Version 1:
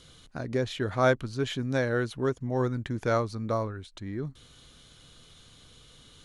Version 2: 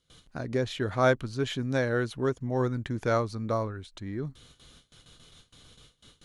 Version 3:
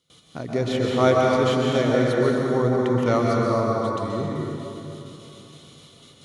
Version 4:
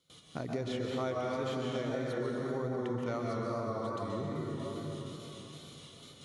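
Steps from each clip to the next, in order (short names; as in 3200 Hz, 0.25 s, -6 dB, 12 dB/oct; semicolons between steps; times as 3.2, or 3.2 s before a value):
gate with hold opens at -43 dBFS
HPF 120 Hz 12 dB/oct; notch 1600 Hz, Q 5.6; plate-style reverb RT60 3.2 s, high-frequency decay 0.6×, pre-delay 0.115 s, DRR -3 dB; gain +3.5 dB
compressor 4:1, threshold -31 dBFS, peak gain reduction 15 dB; wow and flutter 40 cents; gain -3 dB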